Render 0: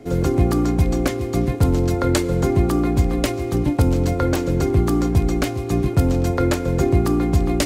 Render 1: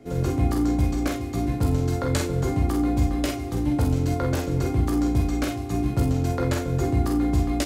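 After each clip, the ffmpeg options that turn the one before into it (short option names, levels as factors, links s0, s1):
-filter_complex "[0:a]asplit=2[s0][s1];[s1]adelay=37,volume=0.398[s2];[s0][s2]amix=inputs=2:normalize=0,asplit=2[s3][s4];[s4]aecho=0:1:16|47|61:0.473|0.562|0.335[s5];[s3][s5]amix=inputs=2:normalize=0,volume=0.422"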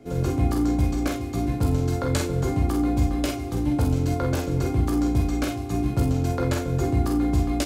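-af "bandreject=f=1900:w=15"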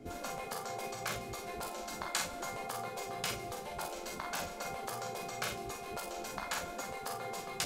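-af "afftfilt=real='re*lt(hypot(re,im),0.126)':imag='im*lt(hypot(re,im),0.126)':win_size=1024:overlap=0.75,areverse,acompressor=mode=upward:threshold=0.0112:ratio=2.5,areverse,volume=0.668"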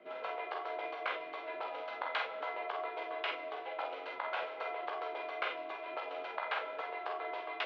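-af "highpass=f=560:t=q:w=0.5412,highpass=f=560:t=q:w=1.307,lowpass=f=3300:t=q:w=0.5176,lowpass=f=3300:t=q:w=0.7071,lowpass=f=3300:t=q:w=1.932,afreqshift=-67,volume=1.41"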